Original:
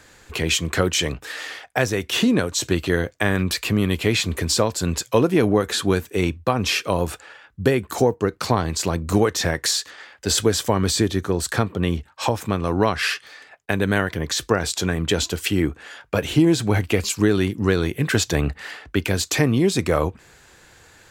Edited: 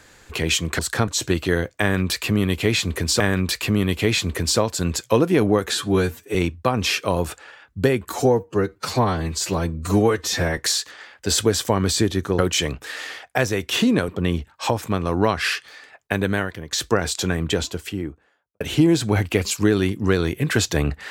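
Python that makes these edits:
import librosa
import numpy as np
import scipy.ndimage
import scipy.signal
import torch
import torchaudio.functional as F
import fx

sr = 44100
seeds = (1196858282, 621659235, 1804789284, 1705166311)

y = fx.studio_fade_out(x, sr, start_s=14.87, length_s=1.32)
y = fx.edit(y, sr, fx.swap(start_s=0.79, length_s=1.7, other_s=11.38, other_length_s=0.29),
    fx.repeat(start_s=3.22, length_s=1.39, count=2),
    fx.stretch_span(start_s=5.77, length_s=0.4, factor=1.5),
    fx.stretch_span(start_s=7.92, length_s=1.65, factor=1.5),
    fx.fade_out_to(start_s=13.78, length_s=0.53, floor_db=-13.5), tone=tone)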